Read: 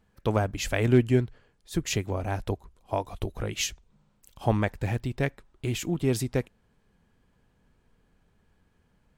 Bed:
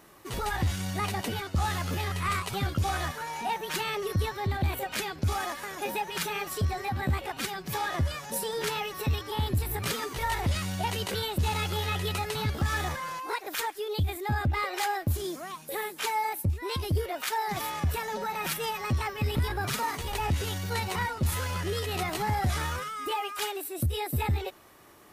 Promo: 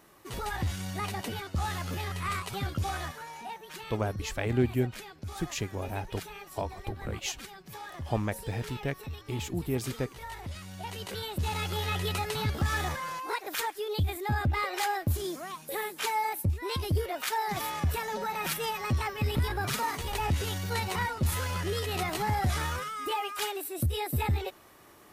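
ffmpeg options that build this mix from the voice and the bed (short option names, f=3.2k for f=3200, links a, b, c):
-filter_complex "[0:a]adelay=3650,volume=-5.5dB[a];[1:a]volume=8dB,afade=t=out:st=2.86:d=0.77:silence=0.375837,afade=t=in:st=10.66:d=1.35:silence=0.266073[b];[a][b]amix=inputs=2:normalize=0"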